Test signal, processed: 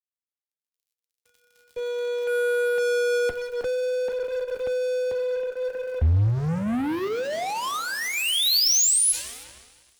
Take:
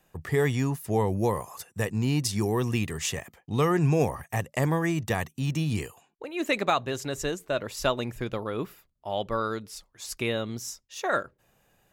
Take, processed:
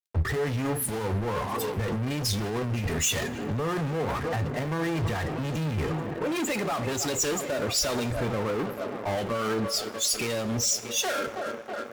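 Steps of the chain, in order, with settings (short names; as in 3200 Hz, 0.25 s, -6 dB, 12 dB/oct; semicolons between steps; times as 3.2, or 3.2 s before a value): on a send: tape echo 0.318 s, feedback 88%, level -21.5 dB, low-pass 2500 Hz; on the sum: loudest bins only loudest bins 32; HPF 54 Hz 6 dB/oct; crackle 300/s -58 dBFS; in parallel at -5 dB: fuzz box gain 52 dB, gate -54 dBFS; on the sum: two-slope reverb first 0.22 s, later 4.4 s, from -22 dB, DRR 8 dB; limiter -15.5 dBFS; three-band expander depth 100%; gain -7 dB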